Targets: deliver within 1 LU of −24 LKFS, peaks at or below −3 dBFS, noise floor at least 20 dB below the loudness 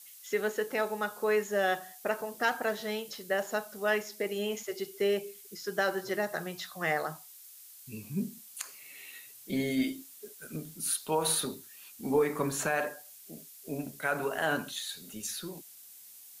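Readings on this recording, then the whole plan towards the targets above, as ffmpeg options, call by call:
background noise floor −52 dBFS; target noise floor −53 dBFS; integrated loudness −32.5 LKFS; sample peak −16.5 dBFS; target loudness −24.0 LKFS
→ -af "afftdn=noise_reduction=6:noise_floor=-52"
-af "volume=8.5dB"

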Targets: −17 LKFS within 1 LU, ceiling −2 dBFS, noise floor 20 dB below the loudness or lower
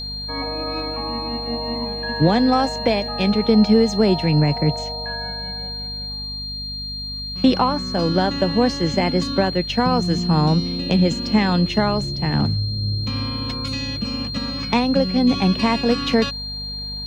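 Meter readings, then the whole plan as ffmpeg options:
mains hum 50 Hz; hum harmonics up to 250 Hz; level of the hum −31 dBFS; interfering tone 4,200 Hz; level of the tone −28 dBFS; integrated loudness −20.5 LKFS; sample peak −4.0 dBFS; target loudness −17.0 LKFS
→ -af "bandreject=frequency=50:width_type=h:width=4,bandreject=frequency=100:width_type=h:width=4,bandreject=frequency=150:width_type=h:width=4,bandreject=frequency=200:width_type=h:width=4,bandreject=frequency=250:width_type=h:width=4"
-af "bandreject=frequency=4200:width=30"
-af "volume=3.5dB,alimiter=limit=-2dB:level=0:latency=1"

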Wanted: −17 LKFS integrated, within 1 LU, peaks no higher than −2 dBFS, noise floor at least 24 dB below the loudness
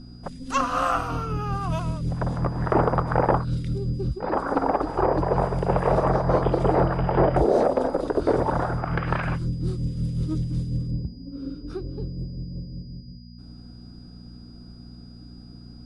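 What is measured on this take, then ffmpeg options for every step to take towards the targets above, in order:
mains hum 60 Hz; hum harmonics up to 240 Hz; level of the hum −42 dBFS; interfering tone 4,900 Hz; level of the tone −54 dBFS; integrated loudness −25.0 LKFS; sample peak −6.0 dBFS; target loudness −17.0 LKFS
→ -af "bandreject=frequency=60:width_type=h:width=4,bandreject=frequency=120:width_type=h:width=4,bandreject=frequency=180:width_type=h:width=4,bandreject=frequency=240:width_type=h:width=4"
-af "bandreject=frequency=4900:width=30"
-af "volume=8dB,alimiter=limit=-2dB:level=0:latency=1"

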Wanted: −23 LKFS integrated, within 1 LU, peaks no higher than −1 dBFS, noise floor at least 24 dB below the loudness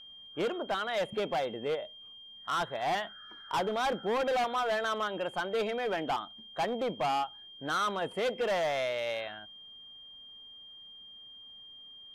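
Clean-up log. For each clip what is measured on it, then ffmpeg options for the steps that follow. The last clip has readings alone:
interfering tone 3,200 Hz; level of the tone −48 dBFS; integrated loudness −32.5 LKFS; sample peak −24.0 dBFS; target loudness −23.0 LKFS
→ -af "bandreject=frequency=3200:width=30"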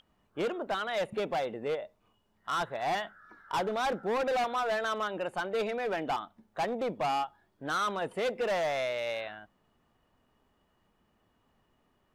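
interfering tone none found; integrated loudness −32.5 LKFS; sample peak −24.5 dBFS; target loudness −23.0 LKFS
→ -af "volume=9.5dB"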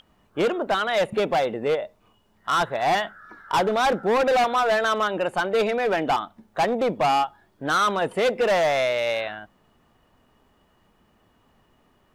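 integrated loudness −23.0 LKFS; sample peak −15.0 dBFS; background noise floor −63 dBFS

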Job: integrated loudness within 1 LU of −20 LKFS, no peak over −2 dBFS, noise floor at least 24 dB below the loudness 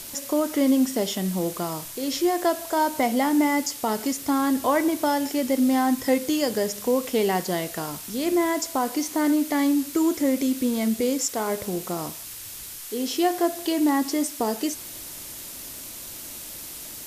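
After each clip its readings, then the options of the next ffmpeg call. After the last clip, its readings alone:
background noise floor −38 dBFS; target noise floor −48 dBFS; integrated loudness −24.0 LKFS; sample peak −10.0 dBFS; target loudness −20.0 LKFS
→ -af "afftdn=noise_reduction=10:noise_floor=-38"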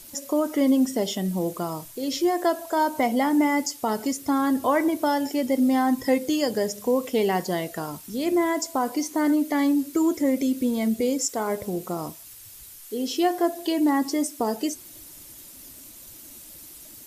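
background noise floor −45 dBFS; target noise floor −49 dBFS
→ -af "afftdn=noise_reduction=6:noise_floor=-45"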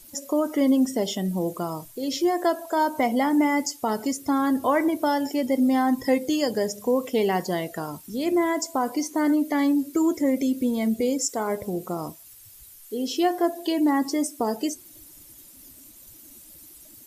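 background noise floor −49 dBFS; integrated loudness −24.5 LKFS; sample peak −10.0 dBFS; target loudness −20.0 LKFS
→ -af "volume=4.5dB"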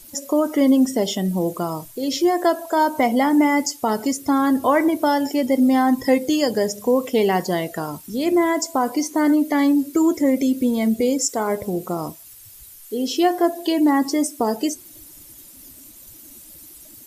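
integrated loudness −20.0 LKFS; sample peak −5.5 dBFS; background noise floor −44 dBFS

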